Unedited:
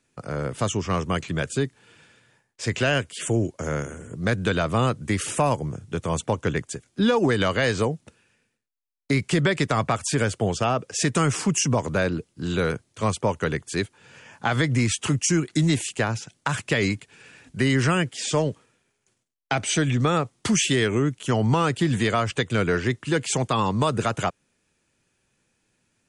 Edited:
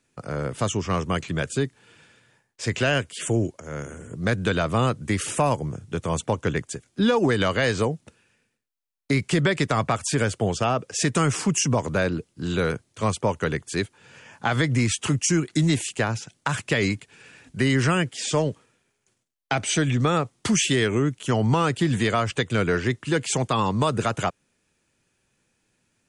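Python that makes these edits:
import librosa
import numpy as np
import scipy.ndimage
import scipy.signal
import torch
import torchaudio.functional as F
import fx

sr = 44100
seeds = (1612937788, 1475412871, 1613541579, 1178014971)

y = fx.edit(x, sr, fx.fade_in_from(start_s=3.6, length_s=0.54, curve='qsin', floor_db=-16.0), tone=tone)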